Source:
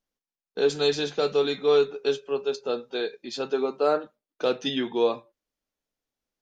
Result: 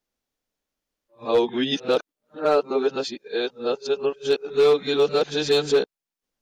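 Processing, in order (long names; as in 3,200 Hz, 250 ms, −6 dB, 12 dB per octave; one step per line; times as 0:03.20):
played backwards from end to start
gain into a clipping stage and back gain 15.5 dB
level +3.5 dB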